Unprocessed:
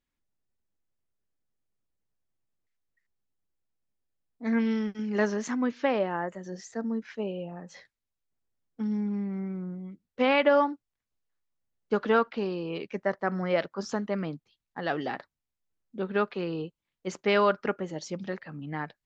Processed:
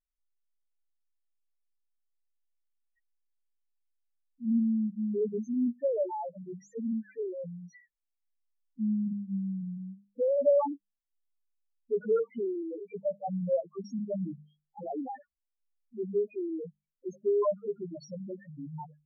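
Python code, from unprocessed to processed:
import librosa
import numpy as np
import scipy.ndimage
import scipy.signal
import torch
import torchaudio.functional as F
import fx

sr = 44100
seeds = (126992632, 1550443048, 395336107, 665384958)

y = fx.spec_topn(x, sr, count=1)
y = fx.hum_notches(y, sr, base_hz=50, count=4)
y = fx.env_lowpass_down(y, sr, base_hz=970.0, full_db=-29.0)
y = y * librosa.db_to_amplitude(5.0)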